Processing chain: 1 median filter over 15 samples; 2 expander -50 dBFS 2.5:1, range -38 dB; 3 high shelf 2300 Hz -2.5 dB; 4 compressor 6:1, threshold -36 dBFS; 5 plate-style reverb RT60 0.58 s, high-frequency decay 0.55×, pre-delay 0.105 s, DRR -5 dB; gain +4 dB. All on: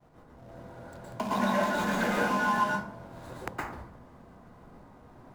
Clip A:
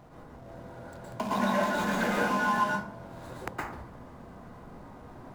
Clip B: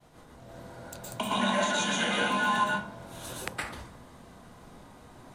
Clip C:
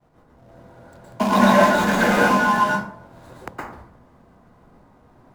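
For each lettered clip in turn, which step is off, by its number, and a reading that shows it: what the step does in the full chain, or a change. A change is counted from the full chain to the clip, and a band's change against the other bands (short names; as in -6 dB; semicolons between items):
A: 2, momentary loudness spread change +2 LU; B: 1, 4 kHz band +11.0 dB; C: 4, mean gain reduction 4.5 dB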